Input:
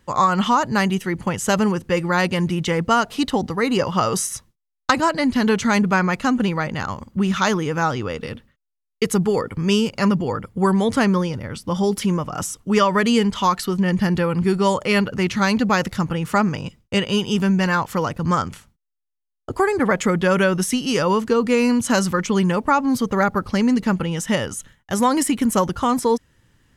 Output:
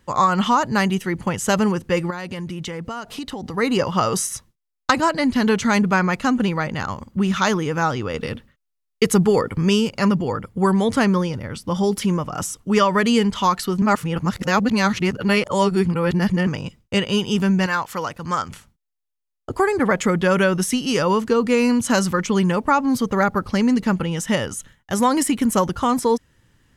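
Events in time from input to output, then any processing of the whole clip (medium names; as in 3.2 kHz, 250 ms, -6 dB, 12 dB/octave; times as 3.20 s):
2.10–3.54 s: compression 8:1, threshold -26 dBFS
8.14–9.69 s: gain +3 dB
13.82–16.47 s: reverse
17.66–18.49 s: bass shelf 460 Hz -10.5 dB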